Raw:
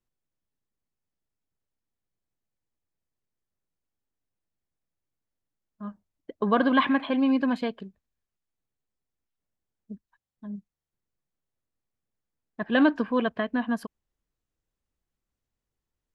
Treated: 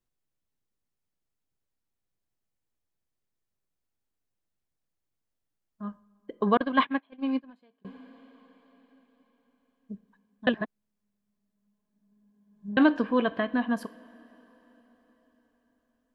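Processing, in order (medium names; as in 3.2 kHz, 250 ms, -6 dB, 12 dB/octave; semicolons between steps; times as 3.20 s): two-slope reverb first 0.43 s, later 4.8 s, from -18 dB, DRR 14 dB; 6.57–7.85 s: gate -20 dBFS, range -33 dB; 10.47–12.77 s: reverse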